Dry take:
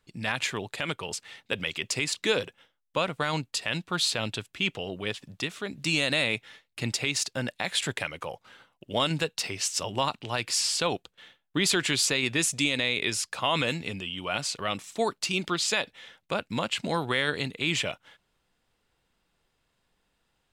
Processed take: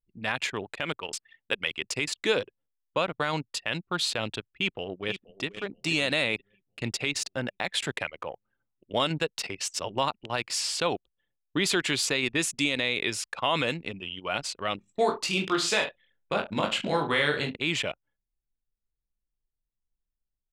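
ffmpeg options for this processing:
-filter_complex "[0:a]asettb=1/sr,asplit=3[a][b][c];[a]atrim=end=1.014[d];[b]atrim=start=1.01:end=1.71,asetpts=PTS-STARTPTS,afade=t=in:d=0.004:c=qsin,afade=t=out:st=0.696:d=0.004:c=qsin,tiltshelf=f=680:g=-3[e];[c]atrim=start=1.706[f];[d][e]acrossfade=d=0.004:c1=hsin:c2=qsin[g];[g][f]acrossfade=d=0.004:c1=qsin:c2=hsin,asplit=2[h][i];[i]afade=t=in:st=4.51:d=0.01,afade=t=out:st=5.45:d=0.01,aecho=0:1:480|960|1440|1920|2400|2880|3360:0.334965|0.200979|0.120588|0.0723525|0.0434115|0.0260469|0.0156281[j];[h][j]amix=inputs=2:normalize=0,asettb=1/sr,asplit=3[k][l][m];[k]atrim=end=14.764[n];[l]atrim=start=14.76:end=17.57,asetpts=PTS-STARTPTS,afade=t=in:d=0.004:c=qsin,afade=t=out:st=2.806:d=0.004:c=qsin,aecho=1:1:20|43|69.45|99.87|134.8:0.631|0.398|0.251|0.158|0.1,atrim=end_sample=123921[o];[m]atrim=start=17.566[p];[n][o]acrossfade=d=0.004:c1=hsin:c2=qsin[q];[q][p]acrossfade=d=0.004:c1=qsin:c2=hsin,bass=f=250:g=-8,treble=f=4k:g=-4,anlmdn=2.51,lowshelf=f=290:g=6"

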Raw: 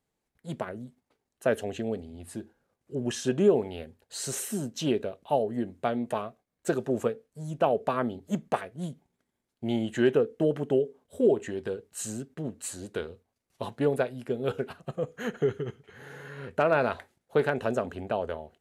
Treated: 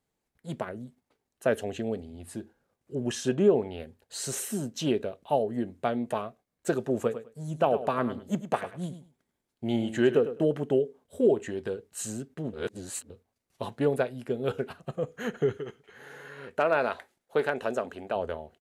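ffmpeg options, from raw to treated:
-filter_complex "[0:a]asettb=1/sr,asplit=3[a][b][c];[a]atrim=end=3.354[d];[b]atrim=start=3.35:end=3.8,asetpts=PTS-STARTPTS,afade=t=in:d=0.004:c=qsin,afade=t=out:st=0.446:d=0.004:c=qsin,highshelf=f=5.5k:g=-8.5[e];[c]atrim=start=3.796[f];[d][e]acrossfade=d=0.004:c1=hsin:c2=qsin[g];[g][f]acrossfade=d=0.004:c1=qsin:c2=hsin,asplit=3[h][i][j];[h]afade=t=out:st=7.1:d=0.02[k];[i]aecho=1:1:103|206:0.251|0.0427,afade=t=in:st=7.1:d=0.02,afade=t=out:st=10.4:d=0.02[l];[j]afade=t=in:st=10.4:d=0.02[m];[k][l][m]amix=inputs=3:normalize=0,asettb=1/sr,asplit=3[n][o][p];[n]atrim=end=15.574[q];[o]atrim=start=15.57:end=18.16,asetpts=PTS-STARTPTS,afade=t=in:d=0.004:c=qsin,afade=t=out:st=2.586:d=0.004:c=qsin,equalizer=f=96:t=o:w=2.2:g=-12[r];[p]atrim=start=18.156[s];[q][r]acrossfade=d=0.004:c1=hsin:c2=qsin[t];[t][s]acrossfade=d=0.004:c1=qsin:c2=hsin,asplit=3[u][v][w];[u]atrim=end=12.532[x];[v]atrim=start=12.528:end=13.102,asetpts=PTS-STARTPTS,areverse[y];[w]atrim=start=13.098[z];[x][y]acrossfade=d=0.004:c1=hsin:c2=hsin[aa];[aa][z]acrossfade=d=0.004:c1=hsin:c2=hsin"

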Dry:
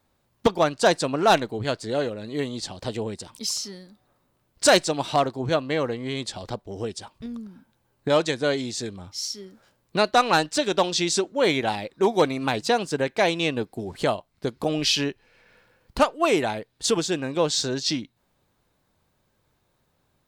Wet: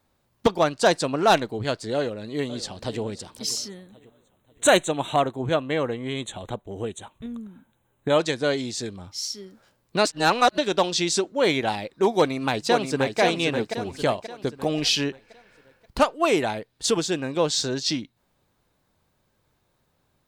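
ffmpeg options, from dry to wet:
-filter_complex "[0:a]asplit=2[a][b];[b]afade=t=in:st=1.95:d=0.01,afade=t=out:st=3.01:d=0.01,aecho=0:1:540|1080|1620|2160:0.16788|0.0671522|0.0268609|0.0107443[c];[a][c]amix=inputs=2:normalize=0,asplit=3[d][e][f];[d]afade=t=out:st=3.68:d=0.02[g];[e]asuperstop=centerf=5000:order=8:qfactor=2.2,afade=t=in:st=3.68:d=0.02,afade=t=out:st=8.18:d=0.02[h];[f]afade=t=in:st=8.18:d=0.02[i];[g][h][i]amix=inputs=3:normalize=0,asplit=2[j][k];[k]afade=t=in:st=12.17:d=0.01,afade=t=out:st=13.2:d=0.01,aecho=0:1:530|1060|1590|2120|2650:0.530884|0.238898|0.107504|0.0483768|0.0217696[l];[j][l]amix=inputs=2:normalize=0,asplit=3[m][n][o];[m]atrim=end=10.052[p];[n]atrim=start=10.048:end=10.582,asetpts=PTS-STARTPTS,areverse[q];[o]atrim=start=10.578[r];[p][q]acrossfade=d=0.004:c1=hsin:c2=hsin[s];[s][r]acrossfade=d=0.004:c1=hsin:c2=hsin"

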